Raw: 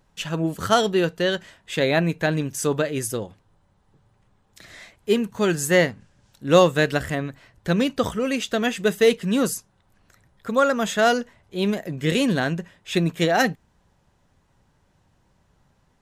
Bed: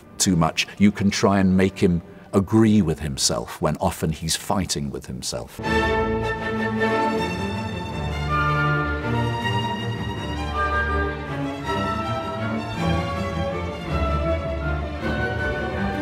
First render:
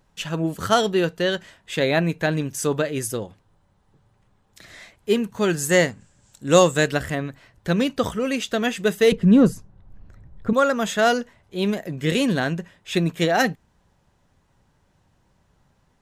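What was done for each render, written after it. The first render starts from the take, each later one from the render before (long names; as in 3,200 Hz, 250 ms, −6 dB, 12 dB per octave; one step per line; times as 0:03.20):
0:05.69–0:06.88: parametric band 7,600 Hz +14.5 dB 0.45 octaves
0:09.12–0:10.53: spectral tilt −4 dB per octave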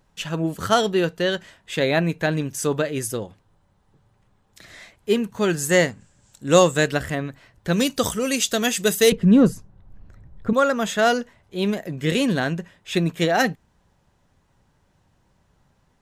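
0:07.73–0:09.10: bass and treble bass 0 dB, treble +14 dB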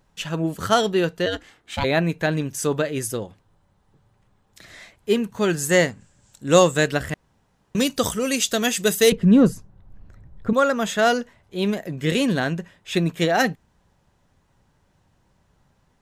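0:01.25–0:01.83: ring modulation 82 Hz → 440 Hz
0:07.14–0:07.75: fill with room tone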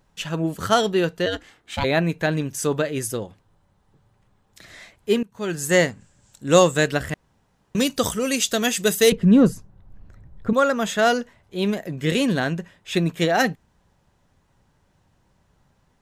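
0:05.23–0:05.75: fade in linear, from −21.5 dB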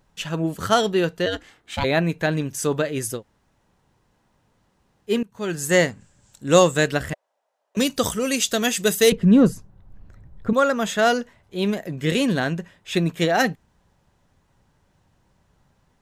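0:03.18–0:05.10: fill with room tone, crossfade 0.10 s
0:07.13–0:07.77: four-pole ladder high-pass 560 Hz, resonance 70%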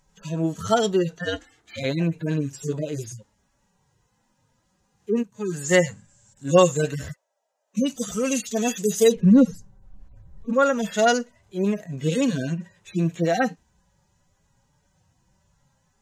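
harmonic-percussive split with one part muted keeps harmonic
parametric band 6,700 Hz +10.5 dB 0.7 octaves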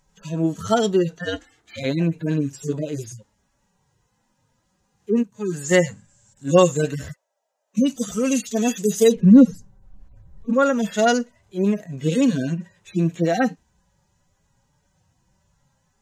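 dynamic equaliser 260 Hz, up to +5 dB, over −32 dBFS, Q 1.3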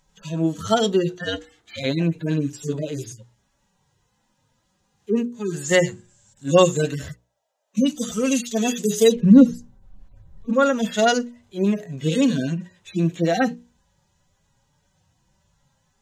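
parametric band 3,500 Hz +5 dB 0.68 octaves
mains-hum notches 60/120/180/240/300/360/420/480 Hz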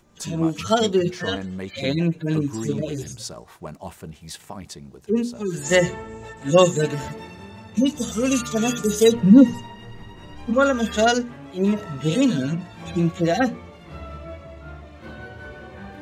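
mix in bed −14 dB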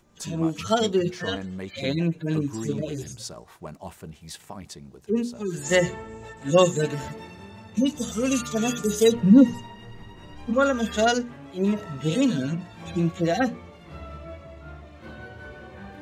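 level −3 dB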